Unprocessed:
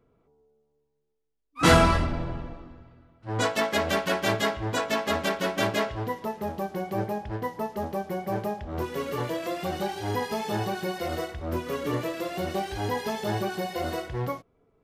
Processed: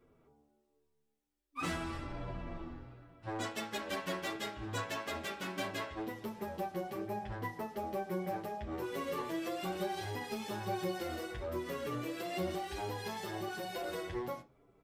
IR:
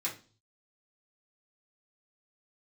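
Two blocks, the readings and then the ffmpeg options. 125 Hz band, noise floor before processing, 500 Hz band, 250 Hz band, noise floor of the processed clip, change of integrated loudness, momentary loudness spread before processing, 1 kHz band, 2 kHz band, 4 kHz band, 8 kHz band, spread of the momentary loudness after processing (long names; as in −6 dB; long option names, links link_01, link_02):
−13.5 dB, −73 dBFS, −11.0 dB, −10.0 dB, −77 dBFS, −11.5 dB, 8 LU, −11.0 dB, −11.5 dB, −11.5 dB, −11.0 dB, 6 LU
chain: -filter_complex "[0:a]acompressor=threshold=-36dB:ratio=8,asoftclip=type=hard:threshold=-32dB,asplit=2[link_01][link_02];[1:a]atrim=start_sample=2205[link_03];[link_02][link_03]afir=irnorm=-1:irlink=0,volume=-7.5dB[link_04];[link_01][link_04]amix=inputs=2:normalize=0,asplit=2[link_05][link_06];[link_06]adelay=8.7,afreqshift=-1.2[link_07];[link_05][link_07]amix=inputs=2:normalize=1,volume=2dB"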